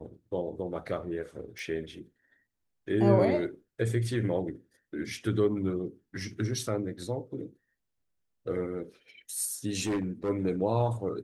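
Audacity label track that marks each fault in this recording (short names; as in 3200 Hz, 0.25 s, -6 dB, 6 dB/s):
1.590000	1.590000	pop
9.830000	10.300000	clipped -26 dBFS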